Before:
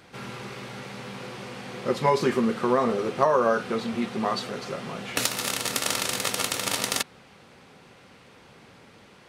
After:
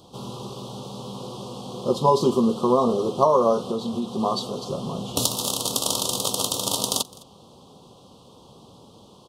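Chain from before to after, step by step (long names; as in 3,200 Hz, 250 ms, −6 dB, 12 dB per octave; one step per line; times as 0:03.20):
Chebyshev band-stop filter 1,100–3,200 Hz, order 3
0:03.62–0:04.19: downward compressor, threshold −27 dBFS, peak gain reduction 4.5 dB
0:04.70–0:05.35: low-shelf EQ 170 Hz +7.5 dB
single-tap delay 210 ms −23.5 dB
level +4 dB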